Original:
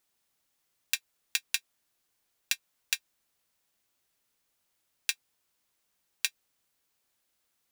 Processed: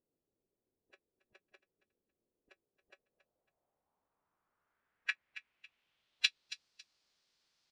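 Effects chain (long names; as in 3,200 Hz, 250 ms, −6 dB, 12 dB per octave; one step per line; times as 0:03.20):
repeating echo 276 ms, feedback 25%, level −16 dB
phase-vocoder pitch shift with formants kept −6 semitones
low-pass filter sweep 410 Hz → 4,800 Hz, 0:02.73–0:06.63
level −1.5 dB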